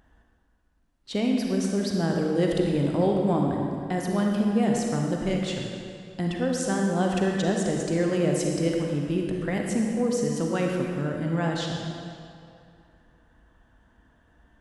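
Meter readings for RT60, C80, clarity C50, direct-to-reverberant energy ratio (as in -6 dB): 2.5 s, 2.0 dB, 1.0 dB, 0.0 dB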